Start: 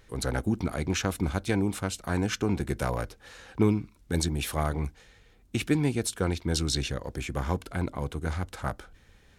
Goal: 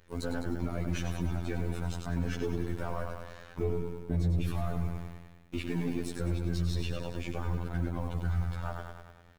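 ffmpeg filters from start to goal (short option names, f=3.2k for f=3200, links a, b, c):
-filter_complex "[0:a]asplit=2[a][b];[b]aeval=exprs='sgn(val(0))*max(abs(val(0))-0.00794,0)':c=same,volume=-8dB[c];[a][c]amix=inputs=2:normalize=0,alimiter=limit=-18.5dB:level=0:latency=1:release=11,equalizer=f=9.6k:w=0.48:g=-9.5,acrusher=bits=6:mode=log:mix=0:aa=0.000001,aeval=exprs='0.133*(cos(1*acos(clip(val(0)/0.133,-1,1)))-cos(1*PI/2))+0.0106*(cos(8*acos(clip(val(0)/0.133,-1,1)))-cos(8*PI/2))':c=same,asettb=1/sr,asplit=3[d][e][f];[d]atrim=end=3.634[g];[e]atrim=start=3.63:end=4.45,asetpts=PTS-STARTPTS,afade=t=in:d=0.004:c=qsin,afade=t=out:st=0.816:d=0.004:c=qsin,tiltshelf=f=800:g=4.5[h];[f]atrim=start=4.446[i];[g][h]acrossfade=d=0.004:c1=hsin:c2=qsin[j];[j][i]acrossfade=d=0.004:c1=qsin:c2=hsin,asplit=2[k][l];[l]aecho=0:1:100|200|300|400|500|600|700|800:0.473|0.274|0.159|0.0923|0.0535|0.0311|0.018|0.0104[m];[k][m]amix=inputs=2:normalize=0,afftfilt=real='hypot(re,im)*cos(PI*b)':imag='0':win_size=2048:overlap=0.75,asoftclip=type=tanh:threshold=-20.5dB"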